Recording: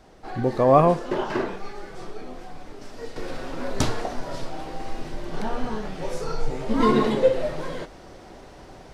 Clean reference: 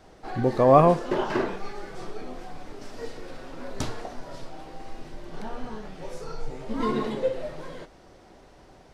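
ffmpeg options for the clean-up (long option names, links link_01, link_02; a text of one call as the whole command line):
ffmpeg -i in.wav -af "agate=range=-21dB:threshold=-36dB,asetnsamples=nb_out_samples=441:pad=0,asendcmd='3.16 volume volume -7.5dB',volume=0dB" out.wav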